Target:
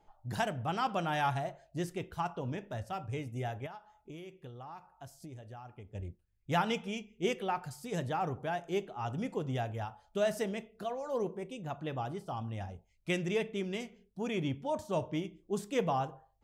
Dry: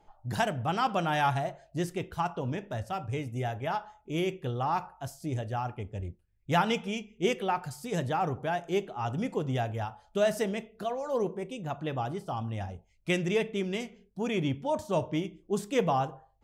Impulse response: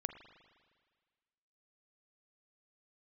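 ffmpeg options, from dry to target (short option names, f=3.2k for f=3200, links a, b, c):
-filter_complex "[0:a]asettb=1/sr,asplit=3[a][b][c];[a]atrim=end=3.664[d];[b]atrim=start=3.66:end=5.95,asetpts=PTS-STARTPTS,afade=t=in:d=0.004:c=qsin,afade=t=out:st=2.286:d=0.004:c=qsin,acompressor=threshold=-41dB:ratio=6[e];[c]atrim=start=5.946[f];[d][e]acrossfade=d=0.004:c1=hsin:c2=qsin[g];[g][f]acrossfade=d=0.004:c1=qsin:c2=hsin,volume=-4.5dB"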